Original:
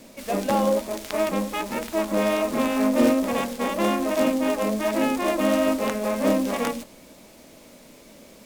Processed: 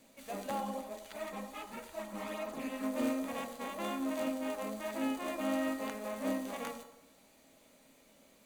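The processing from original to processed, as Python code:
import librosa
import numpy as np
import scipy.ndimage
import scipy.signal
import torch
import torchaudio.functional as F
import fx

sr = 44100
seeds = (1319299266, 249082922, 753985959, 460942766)

y = fx.peak_eq(x, sr, hz=340.0, db=-4.0, octaves=1.2)
y = fx.notch(y, sr, hz=5300.0, q=6.8)
y = fx.comb_fb(y, sr, f0_hz=270.0, decay_s=0.63, harmonics='odd', damping=0.0, mix_pct=80)
y = fx.chorus_voices(y, sr, voices=4, hz=1.5, base_ms=11, depth_ms=3.0, mix_pct=65, at=(0.6, 2.82), fade=0.02)
y = fx.low_shelf(y, sr, hz=200.0, db=-4.5)
y = fx.echo_wet_bandpass(y, sr, ms=90, feedback_pct=51, hz=710.0, wet_db=-10.0)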